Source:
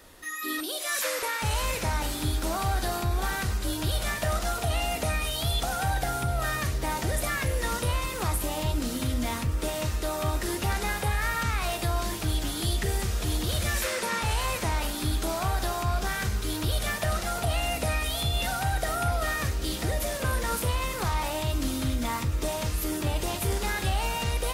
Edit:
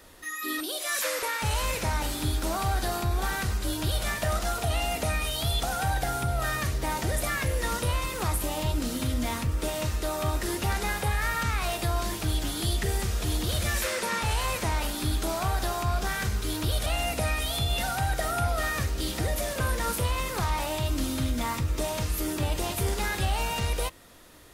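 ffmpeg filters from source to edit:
ffmpeg -i in.wav -filter_complex "[0:a]asplit=2[link_01][link_02];[link_01]atrim=end=16.862[link_03];[link_02]atrim=start=17.498[link_04];[link_03][link_04]acrossfade=duration=0.004:curve1=hsin:curve2=hsin" out.wav

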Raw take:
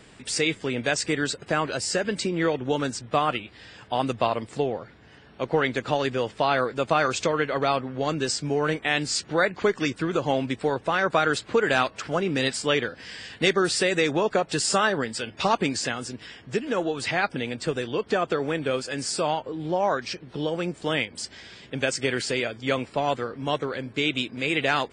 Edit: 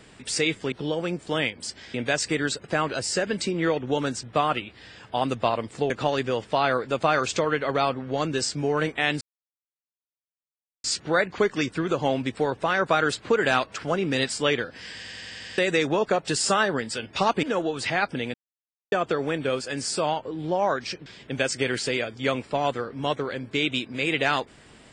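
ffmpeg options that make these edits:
ffmpeg -i in.wav -filter_complex "[0:a]asplit=16[link_01][link_02][link_03][link_04][link_05][link_06][link_07][link_08][link_09][link_10][link_11][link_12][link_13][link_14][link_15][link_16];[link_01]atrim=end=0.722[link_17];[link_02]atrim=start=20.268:end=21.492[link_18];[link_03]atrim=start=0.718:end=4.682[link_19];[link_04]atrim=start=5.768:end=9.08,asetpts=PTS-STARTPTS,afade=type=out:start_time=3.308:duration=0.004:curve=hsin,apad=pad_dur=1.63[link_20];[link_05]atrim=start=9.08:end=13.282,asetpts=PTS-STARTPTS,afade=type=in:duration=0.004:curve=hsin[link_21];[link_06]atrim=start=13.188:end=13.282[link_22];[link_07]atrim=start=13.188:end=13.282[link_23];[link_08]atrim=start=13.188:end=13.282[link_24];[link_09]atrim=start=13.188:end=13.282[link_25];[link_10]atrim=start=13.188:end=13.282[link_26];[link_11]atrim=start=13.188:end=13.282[link_27];[link_12]atrim=start=13.818:end=15.672[link_28];[link_13]atrim=start=16.638:end=17.55,asetpts=PTS-STARTPTS,afade=type=out:start_time=0.908:duration=0.004:curve=hsin[link_29];[link_14]atrim=start=17.55:end=18.13,asetpts=PTS-STARTPTS,volume=0[link_30];[link_15]atrim=start=18.13:end=20.272,asetpts=PTS-STARTPTS,afade=type=in:duration=0.004:curve=hsin[link_31];[link_16]atrim=start=21.488[link_32];[link_17][link_18]acrossfade=duration=0.004:curve1=hsin:curve2=hsin[link_33];[link_33][link_19]acrossfade=duration=0.004:curve1=hsin:curve2=hsin[link_34];[link_20][link_21]concat=n=2:v=0:a=1[link_35];[link_34][link_35]acrossfade=duration=0.004:curve1=hsin:curve2=hsin[link_36];[link_36][link_22]acrossfade=duration=0.004:curve1=hsin:curve2=hsin[link_37];[link_37][link_23]acrossfade=duration=0.004:curve1=hsin:curve2=hsin[link_38];[link_38][link_24]acrossfade=duration=0.004:curve1=hsin:curve2=hsin[link_39];[link_39][link_25]acrossfade=duration=0.004:curve1=hsin:curve2=hsin[link_40];[link_40][link_26]acrossfade=duration=0.004:curve1=hsin:curve2=hsin[link_41];[link_41][link_27]acrossfade=duration=0.004:curve1=hsin:curve2=hsin[link_42];[link_42][link_28]acrossfade=duration=0.004:curve1=hsin:curve2=hsin[link_43];[link_29][link_30][link_31]concat=n=3:v=0:a=1[link_44];[link_43][link_44]acrossfade=duration=0.004:curve1=hsin:curve2=hsin[link_45];[link_45][link_32]acrossfade=duration=0.004:curve1=hsin:curve2=hsin" out.wav

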